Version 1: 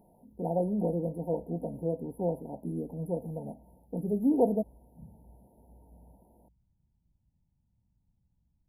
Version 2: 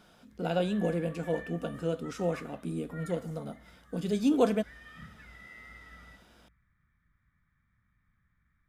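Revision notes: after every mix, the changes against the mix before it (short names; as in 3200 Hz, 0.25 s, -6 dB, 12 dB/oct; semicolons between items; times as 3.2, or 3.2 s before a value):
master: remove brick-wall FIR band-stop 980–10000 Hz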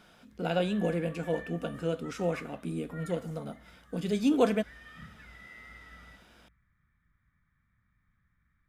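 speech: add bell 2100 Hz +5 dB 1.1 oct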